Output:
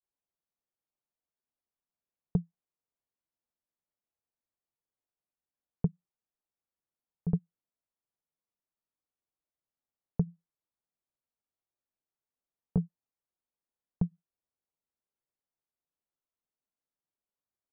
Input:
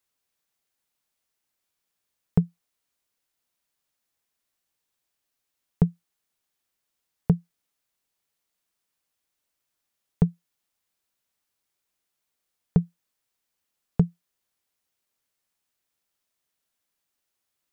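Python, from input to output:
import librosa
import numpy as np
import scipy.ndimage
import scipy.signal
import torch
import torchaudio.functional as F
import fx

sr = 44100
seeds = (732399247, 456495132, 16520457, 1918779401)

y = fx.granulator(x, sr, seeds[0], grain_ms=100.0, per_s=20.0, spray_ms=38.0, spread_st=0)
y = scipy.signal.sosfilt(scipy.signal.butter(2, 1000.0, 'lowpass', fs=sr, output='sos'), y)
y = y * librosa.db_to_amplitude(-7.5)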